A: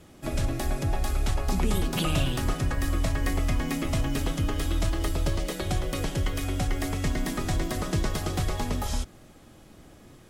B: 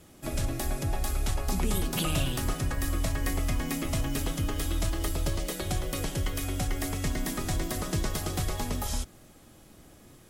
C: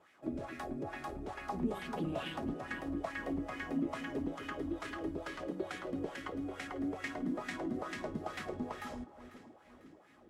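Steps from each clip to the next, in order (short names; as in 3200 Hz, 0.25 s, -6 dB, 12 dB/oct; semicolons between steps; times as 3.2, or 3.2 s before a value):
high shelf 7200 Hz +9.5 dB; gain -3 dB
wah 2.3 Hz 240–2000 Hz, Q 2.7; echo with dull and thin repeats by turns 0.248 s, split 980 Hz, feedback 66%, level -11 dB; gain +3 dB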